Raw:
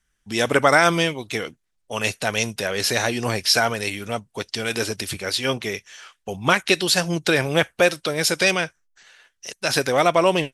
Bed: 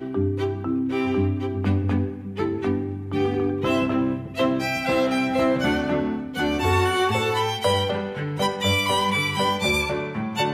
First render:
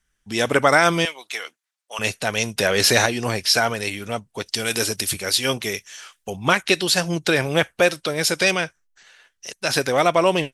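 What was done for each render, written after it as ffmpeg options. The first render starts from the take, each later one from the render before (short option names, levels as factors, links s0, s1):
-filter_complex "[0:a]asettb=1/sr,asplit=3[s0][s1][s2];[s0]atrim=end=1.054[s3];[s1]atrim=start=1.05:end=1.99,asetpts=PTS-STARTPTS,afade=t=in:d=0.004:c=qsin,afade=t=out:st=0.936:d=0.004:c=qsin,highpass=860[s4];[s2]atrim=start=1.986[s5];[s3][s4]acrossfade=d=0.004:c1=hsin:c2=qsin[s6];[s6][s5]acrossfade=d=0.004:c1=qsin:c2=hsin,asettb=1/sr,asplit=3[s7][s8][s9];[s7]atrim=end=2.574[s10];[s8]atrim=start=2.57:end=3.06,asetpts=PTS-STARTPTS,afade=t=in:d=0.004:c=qsin,afade=t=out:st=0.486:d=0.004:c=qsin,acontrast=49[s11];[s9]atrim=start=3.056[s12];[s10][s11]acrossfade=d=0.004:c1=hsin:c2=qsin[s13];[s13][s12]acrossfade=d=0.004:c1=qsin:c2=hsin,asettb=1/sr,asplit=3[s14][s15][s16];[s14]atrim=end=4.464[s17];[s15]atrim=start=4.46:end=6.3,asetpts=PTS-STARTPTS,afade=t=in:d=0.004:c=qsin,afade=t=out:st=1.836:d=0.004:c=qsin,highshelf=f=6000:g=11.5[s18];[s16]atrim=start=6.296[s19];[s17][s18]acrossfade=d=0.004:c1=hsin:c2=qsin[s20];[s20][s19]acrossfade=d=0.004:c1=qsin:c2=hsin"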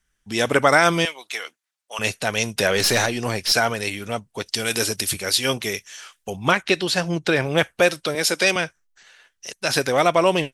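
-filter_complex "[0:a]asettb=1/sr,asplit=3[s0][s1][s2];[s0]atrim=end=2.774[s3];[s1]atrim=start=2.77:end=3.52,asetpts=PTS-STARTPTS,afade=t=in:d=0.004:c=qsin,afade=t=out:st=0.746:d=0.004:c=qsin,aeval=exprs='(tanh(3.98*val(0)+0.3)-tanh(0.3))/3.98':c=same[s4];[s2]atrim=start=3.516[s5];[s3][s4]acrossfade=d=0.004:c1=hsin:c2=qsin[s6];[s6][s5]acrossfade=d=0.004:c1=qsin:c2=hsin,asettb=1/sr,asplit=3[s7][s8][s9];[s7]atrim=end=6.514[s10];[s8]atrim=start=6.51:end=7.58,asetpts=PTS-STARTPTS,afade=t=in:d=0.004:c=qsin,afade=t=out:st=1.066:d=0.004:c=qsin,lowpass=f=3500:p=1[s11];[s9]atrim=start=7.576[s12];[s10][s11]acrossfade=d=0.004:c1=hsin:c2=qsin[s13];[s13][s12]acrossfade=d=0.004:c1=qsin:c2=hsin,asettb=1/sr,asplit=3[s14][s15][s16];[s14]atrim=end=8.154[s17];[s15]atrim=start=8.15:end=8.56,asetpts=PTS-STARTPTS,afade=t=in:d=0.004:c=qsin,afade=t=out:st=0.406:d=0.004:c=qsin,highpass=f=190:w=0.5412,highpass=f=190:w=1.3066[s18];[s16]atrim=start=8.556[s19];[s17][s18]acrossfade=d=0.004:c1=hsin:c2=qsin[s20];[s20][s19]acrossfade=d=0.004:c1=qsin:c2=hsin"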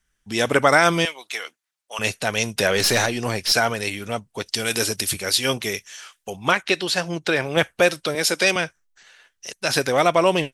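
-filter_complex "[0:a]asettb=1/sr,asplit=3[s0][s1][s2];[s0]atrim=end=5.964[s3];[s1]atrim=start=5.96:end=7.57,asetpts=PTS-STARTPTS,afade=t=in:d=0.004:c=qsin,afade=t=out:st=1.606:d=0.004:c=qsin,lowshelf=f=260:g=-7[s4];[s2]atrim=start=7.566[s5];[s3][s4]acrossfade=d=0.004:c1=hsin:c2=qsin[s6];[s6][s5]acrossfade=d=0.004:c1=qsin:c2=hsin"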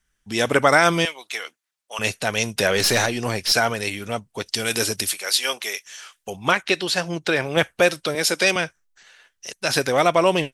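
-filter_complex "[0:a]asettb=1/sr,asplit=3[s0][s1][s2];[s0]atrim=end=5.104[s3];[s1]atrim=start=5.1:end=5.86,asetpts=PTS-STARTPTS,afade=t=in:d=0.004:c=qsin,afade=t=out:st=0.756:d=0.004:c=qsin,highpass=640[s4];[s2]atrim=start=5.856[s5];[s3][s4]acrossfade=d=0.004:c1=hsin:c2=qsin[s6];[s6][s5]acrossfade=d=0.004:c1=qsin:c2=hsin"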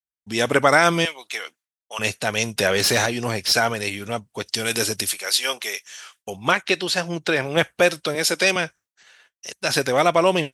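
-af "agate=range=0.0224:threshold=0.00355:ratio=3:detection=peak,highpass=53"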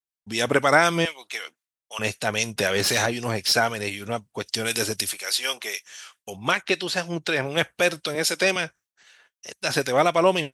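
-filter_complex "[0:a]acrossover=split=1900[s0][s1];[s0]aeval=exprs='val(0)*(1-0.5/2+0.5/2*cos(2*PI*3.9*n/s))':c=same[s2];[s1]aeval=exprs='val(0)*(1-0.5/2-0.5/2*cos(2*PI*3.9*n/s))':c=same[s3];[s2][s3]amix=inputs=2:normalize=0"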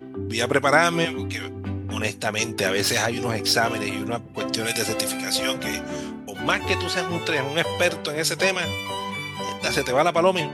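-filter_complex "[1:a]volume=0.398[s0];[0:a][s0]amix=inputs=2:normalize=0"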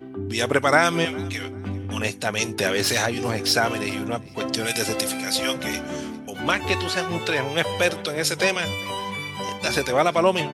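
-af "aecho=1:1:400|800:0.0631|0.0183"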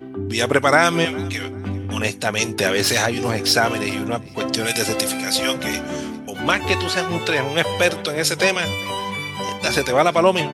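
-af "volume=1.5,alimiter=limit=0.891:level=0:latency=1"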